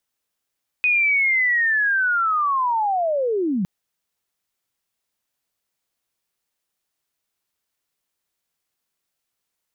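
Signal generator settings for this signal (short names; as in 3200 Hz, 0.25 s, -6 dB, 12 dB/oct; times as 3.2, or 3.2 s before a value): chirp linear 2500 Hz -> 170 Hz -15 dBFS -> -19 dBFS 2.81 s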